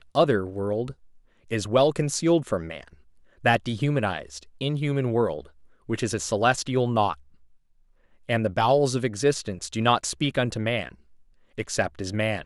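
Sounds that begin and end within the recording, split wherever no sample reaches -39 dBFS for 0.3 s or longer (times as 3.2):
1.51–2.93
3.44–5.46
5.89–7.14
8.29–10.92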